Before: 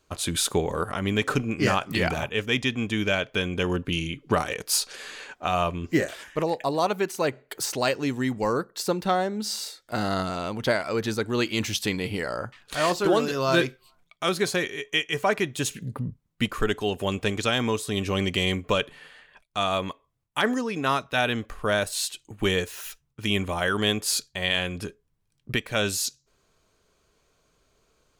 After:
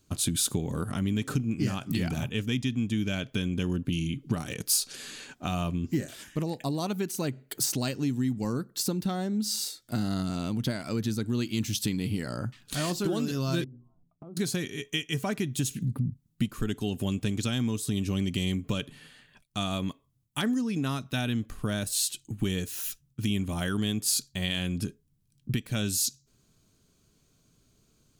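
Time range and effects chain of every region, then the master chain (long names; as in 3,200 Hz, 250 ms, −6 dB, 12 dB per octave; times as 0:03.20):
0:13.64–0:14.37: inverse Chebyshev low-pass filter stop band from 1,900 Hz + mains-hum notches 60/120/180/240/300 Hz + downward compressor 12 to 1, threshold −41 dBFS
whole clip: graphic EQ with 10 bands 125 Hz +9 dB, 250 Hz +8 dB, 500 Hz −7 dB, 1,000 Hz −6 dB, 2,000 Hz −5 dB; downward compressor 3 to 1, threshold −26 dBFS; high-shelf EQ 6,700 Hz +7.5 dB; level −1 dB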